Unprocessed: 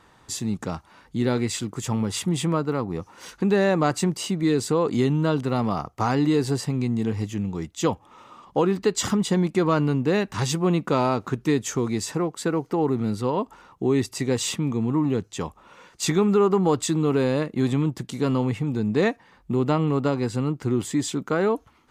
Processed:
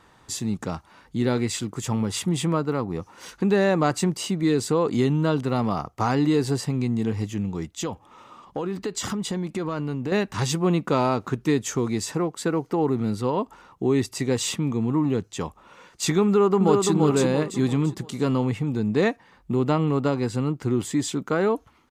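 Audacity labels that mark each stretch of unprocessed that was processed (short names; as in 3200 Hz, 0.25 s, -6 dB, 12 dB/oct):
7.710000	10.120000	compressor 4:1, threshold -25 dBFS
16.260000	16.920000	echo throw 0.34 s, feedback 40%, level -3.5 dB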